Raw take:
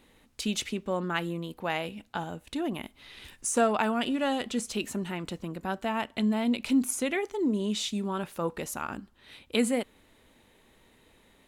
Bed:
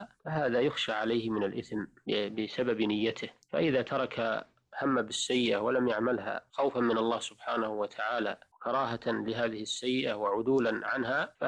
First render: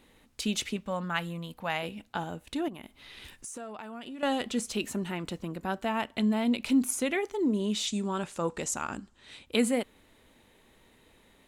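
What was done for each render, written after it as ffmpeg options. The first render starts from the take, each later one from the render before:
-filter_complex "[0:a]asettb=1/sr,asplit=3[a][b][c];[a]atrim=end=0.764[d];[b]atrim=start=0.76:end=1.83,asetpts=PTS-STARTPTS,afade=t=in:d=0.004:c=qsin,afade=t=out:st=1.066:d=0.004:c=qsin,equalizer=f=370:t=o:w=0.58:g=-13[e];[c]atrim=start=1.826[f];[d][e]acrossfade=d=0.004:c1=hsin:c2=qsin[g];[g][f]acrossfade=d=0.004:c1=qsin:c2=hsin,asettb=1/sr,asplit=3[h][i][j];[h]atrim=end=2.684[k];[i]atrim=start=2.68:end=4.23,asetpts=PTS-STARTPTS,afade=t=in:d=0.004:c=qsin,afade=t=out:st=1.546:d=0.004:c=qsin,acompressor=threshold=-39dB:ratio=6:attack=3.2:release=140:knee=1:detection=peak[l];[j]atrim=start=4.226[m];[k][l]acrossfade=d=0.004:c1=hsin:c2=qsin[n];[n][m]acrossfade=d=0.004:c1=qsin:c2=hsin,asettb=1/sr,asplit=3[o][p][q];[o]atrim=end=7.874[r];[p]atrim=start=7.87:end=9.46,asetpts=PTS-STARTPTS,afade=t=in:d=0.004:c=qsin,afade=t=out:st=1.586:d=0.004:c=qsin,lowpass=f=7.6k:t=q:w=3.3[s];[q]atrim=start=9.456[t];[r][s]acrossfade=d=0.004:c1=hsin:c2=qsin[u];[u][t]acrossfade=d=0.004:c1=qsin:c2=hsin"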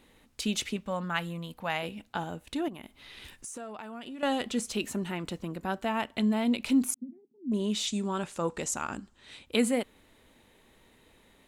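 -filter_complex "[0:a]asettb=1/sr,asplit=3[a][b][c];[a]atrim=end=6.944[d];[b]atrim=start=6.94:end=7.52,asetpts=PTS-STARTPTS,afade=t=in:d=0.004:c=qsin,afade=t=out:st=0.576:d=0.004:c=qsin,asuperpass=centerf=210:order=4:qfactor=3.6[e];[c]atrim=start=7.516[f];[d][e]acrossfade=d=0.004:c1=hsin:c2=qsin[g];[g][f]acrossfade=d=0.004:c1=qsin:c2=hsin"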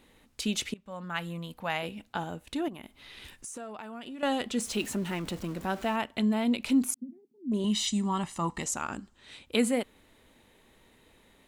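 -filter_complex "[0:a]asettb=1/sr,asplit=3[a][b][c];[a]atrim=end=4.604[d];[b]atrim=start=4.6:end=5.96,asetpts=PTS-STARTPTS,afade=t=in:d=0.004:c=qsin,afade=t=out:st=1.356:d=0.004:c=qsin,aeval=exprs='val(0)+0.5*0.00841*sgn(val(0))':c=same[e];[c]atrim=start=5.956[f];[d][e]acrossfade=d=0.004:c1=hsin:c2=qsin[g];[g][f]acrossfade=d=0.004:c1=qsin:c2=hsin,asettb=1/sr,asplit=3[h][i][j];[h]atrim=end=7.644[k];[i]atrim=start=7.64:end=8.63,asetpts=PTS-STARTPTS,afade=t=in:d=0.004:c=qsin,afade=t=out:st=0.986:d=0.004:c=qsin,aecho=1:1:1:0.77,atrim=end_sample=43659[l];[j]atrim=start=8.626[m];[k][l]acrossfade=d=0.004:c1=hsin:c2=qsin[n];[n][m]acrossfade=d=0.004:c1=qsin:c2=hsin,asplit=2[o][p];[o]atrim=end=0.74,asetpts=PTS-STARTPTS,afade=t=out:st=0.736:d=0.004:c=hsin:silence=0.0841395[q];[p]atrim=start=0.74,asetpts=PTS-STARTPTS,afade=t=in:d=0.6:silence=0.0841395[r];[q][r]concat=n=2:v=0:a=1"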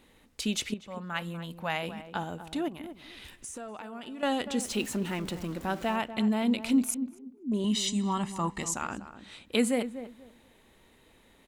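-filter_complex "[0:a]asplit=2[a][b];[b]adelay=243,lowpass=f=1.2k:p=1,volume=-11dB,asplit=2[c][d];[d]adelay=243,lowpass=f=1.2k:p=1,volume=0.22,asplit=2[e][f];[f]adelay=243,lowpass=f=1.2k:p=1,volume=0.22[g];[a][c][e][g]amix=inputs=4:normalize=0"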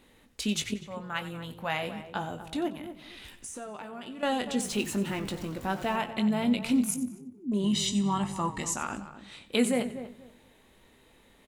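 -filter_complex "[0:a]asplit=2[a][b];[b]adelay=20,volume=-9dB[c];[a][c]amix=inputs=2:normalize=0,asplit=4[d][e][f][g];[e]adelay=91,afreqshift=-49,volume=-15dB[h];[f]adelay=182,afreqshift=-98,volume=-25.2dB[i];[g]adelay=273,afreqshift=-147,volume=-35.3dB[j];[d][h][i][j]amix=inputs=4:normalize=0"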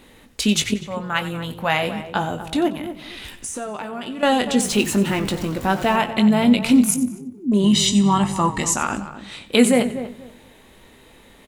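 -af "volume=11dB,alimiter=limit=-3dB:level=0:latency=1"

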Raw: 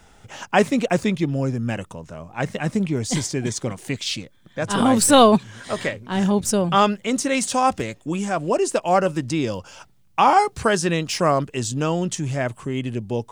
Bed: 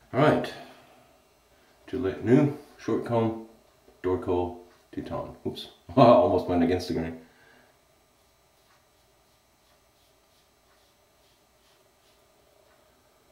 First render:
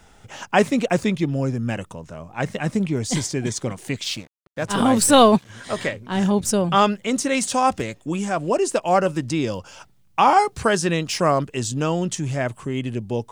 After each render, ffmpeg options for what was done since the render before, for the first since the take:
-filter_complex "[0:a]asettb=1/sr,asplit=3[a][b][c];[a]atrim=end=4.044[d];[b]atrim=start=4.04:end=5.5,asetpts=PTS-STARTPTS,afade=t=in:d=0.004:c=qsin,afade=t=out:st=1.456:d=0.004:c=qsin,aeval=exprs='sgn(val(0))*max(abs(val(0))-0.00841,0)':c=same[e];[c]atrim=start=5.496[f];[d][e]acrossfade=d=0.004:c1=hsin:c2=qsin[g];[g][f]acrossfade=d=0.004:c1=qsin:c2=hsin"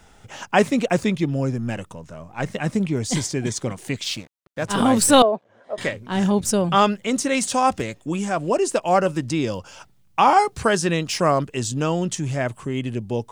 -filter_complex "[0:a]asettb=1/sr,asplit=3[a][b][c];[a]atrim=end=1.574[d];[b]atrim=start=1.57:end=2.54,asetpts=PTS-STARTPTS,afade=t=in:d=0.004:c=qsin,afade=t=out:st=0.966:d=0.004:c=qsin,aeval=exprs='if(lt(val(0),0),0.708*val(0),val(0))':c=same[e];[c]atrim=start=2.536[f];[d][e]acrossfade=d=0.004:c1=hsin:c2=qsin[g];[g][f]acrossfade=d=0.004:c1=qsin:c2=hsin,asettb=1/sr,asplit=3[h][i][j];[h]atrim=end=5.224[k];[i]atrim=start=5.22:end=5.78,asetpts=PTS-STARTPTS,afade=t=in:d=0.004:c=qsin,afade=t=out:st=0.556:d=0.004:c=qsin,bandpass=f=590:t=q:w=2.9[l];[j]atrim=start=5.776[m];[k][l]acrossfade=d=0.004:c1=hsin:c2=qsin[n];[n][m]acrossfade=d=0.004:c1=qsin:c2=hsin"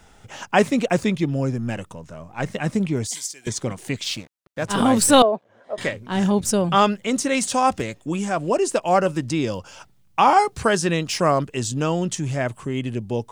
-filter_complex "[0:a]asettb=1/sr,asplit=3[a][b][c];[a]atrim=end=3.074[d];[b]atrim=start=3.07:end=3.47,asetpts=PTS-STARTPTS,afade=t=in:d=0.004:c=qsin,afade=t=out:st=0.396:d=0.004:c=qsin,aderivative[e];[c]atrim=start=3.466[f];[d][e]acrossfade=d=0.004:c1=hsin:c2=qsin[g];[g][f]acrossfade=d=0.004:c1=qsin:c2=hsin"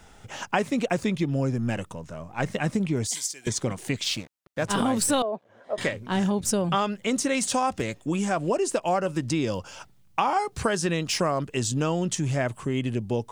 -af "acompressor=threshold=-21dB:ratio=6"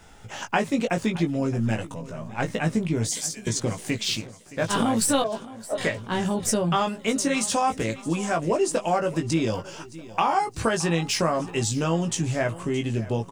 -filter_complex "[0:a]asplit=2[a][b];[b]adelay=18,volume=-4.5dB[c];[a][c]amix=inputs=2:normalize=0,aecho=1:1:619|1238|1857|2476:0.126|0.0567|0.0255|0.0115"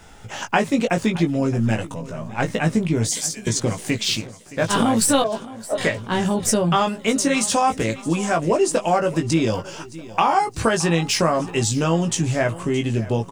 -af "volume=4.5dB"

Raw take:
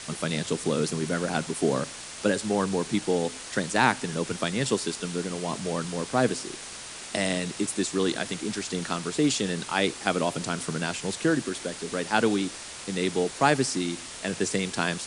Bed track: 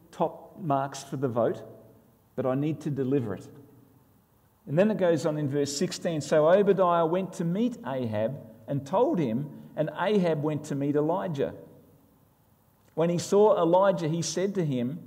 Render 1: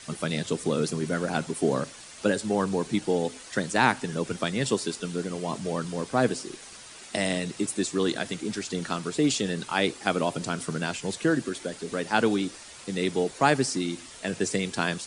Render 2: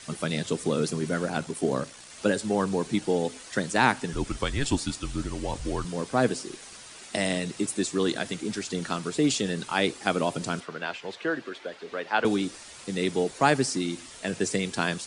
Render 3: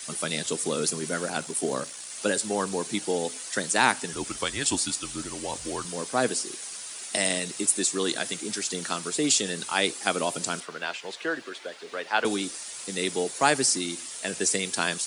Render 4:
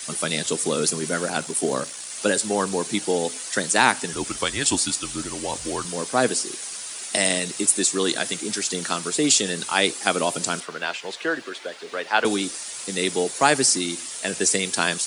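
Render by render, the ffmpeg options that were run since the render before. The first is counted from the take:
-af "afftdn=nr=8:nf=-40"
-filter_complex "[0:a]asettb=1/sr,asplit=3[a][b][c];[a]atrim=end=1.284[d];[b]atrim=start=1.28:end=2.11,asetpts=PTS-STARTPTS,afade=t=in:d=0.004:c=qsin,afade=t=out:st=0.826:d=0.004:c=qsin,tremolo=f=62:d=0.4[e];[c]atrim=start=2.106[f];[d][e]acrossfade=d=0.004:c1=hsin:c2=qsin[g];[g][f]acrossfade=d=0.004:c1=qsin:c2=hsin,asettb=1/sr,asplit=3[h][i][j];[h]atrim=end=4.134[k];[i]atrim=start=4.13:end=5.85,asetpts=PTS-STARTPTS,afade=t=in:d=0.004:c=qsin,afade=t=out:st=1.716:d=0.004:c=qsin,afreqshift=-130[l];[j]atrim=start=5.846[m];[k][l]acrossfade=d=0.004:c1=hsin:c2=qsin[n];[n][m]acrossfade=d=0.004:c1=qsin:c2=hsin,asettb=1/sr,asplit=3[o][p][q];[o]atrim=end=10.604[r];[p]atrim=start=10.6:end=12.25,asetpts=PTS-STARTPTS,afade=t=in:d=0.004:c=qsin,afade=t=out:st=1.646:d=0.004:c=qsin,acrossover=split=400 4200:gain=0.178 1 0.0631[s][t][u];[s][t][u]amix=inputs=3:normalize=0[v];[q]atrim=start=12.246[w];[r][v]acrossfade=d=0.004:c1=hsin:c2=qsin[x];[x][w]acrossfade=d=0.004:c1=qsin:c2=hsin"
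-af "highpass=47,aemphasis=mode=production:type=bsi"
-af "volume=4.5dB,alimiter=limit=-3dB:level=0:latency=1"

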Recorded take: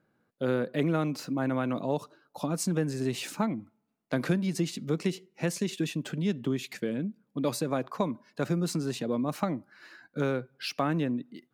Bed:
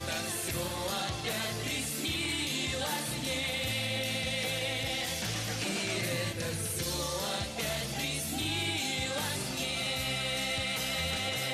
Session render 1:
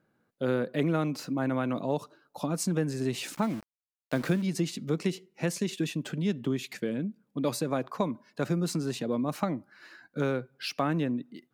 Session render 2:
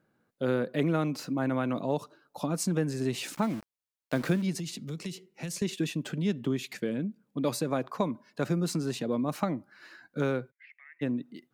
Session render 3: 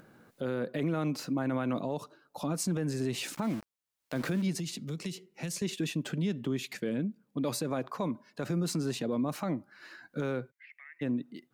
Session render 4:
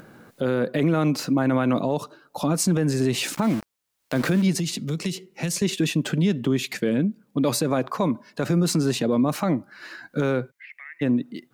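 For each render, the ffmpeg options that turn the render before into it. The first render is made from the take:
-filter_complex "[0:a]asettb=1/sr,asplit=3[a][b][c];[a]atrim=end=3.344[d];[b]atrim=start=3.34:end=4.42,asetpts=PTS-STARTPTS,afade=t=in:d=0.004:c=qsin,afade=t=out:st=1.076:d=0.004:c=qsin,aeval=exprs='val(0)*gte(abs(val(0)),0.00944)':c=same[e];[c]atrim=start=4.416[f];[d][e]acrossfade=d=0.004:c1=hsin:c2=qsin[g];[g][f]acrossfade=d=0.004:c1=qsin:c2=hsin"
-filter_complex "[0:a]asettb=1/sr,asplit=3[a][b][c];[a]atrim=end=4.554[d];[b]atrim=start=4.55:end=5.62,asetpts=PTS-STARTPTS,afade=t=in:d=0.004:c=qsin,afade=t=out:st=1.066:d=0.004:c=qsin,acrossover=split=150|3000[e][f][g];[f]acompressor=threshold=-40dB:ratio=6:attack=3.2:release=140:knee=2.83:detection=peak[h];[e][h][g]amix=inputs=3:normalize=0[i];[c]atrim=start=5.616[j];[d][i]acrossfade=d=0.004:c1=hsin:c2=qsin[k];[k][j]acrossfade=d=0.004:c1=qsin:c2=hsin,asplit=3[l][m][n];[l]afade=t=out:st=10.5:d=0.02[o];[m]asuperpass=centerf=2000:order=4:qfactor=6.3,afade=t=in:st=10.5:d=0.02,afade=t=out:st=11.01:d=0.02[p];[n]afade=t=in:st=11.01:d=0.02[q];[o][p][q]amix=inputs=3:normalize=0"
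-af "acompressor=mode=upward:threshold=-45dB:ratio=2.5,alimiter=limit=-23dB:level=0:latency=1:release=31"
-af "volume=10dB"

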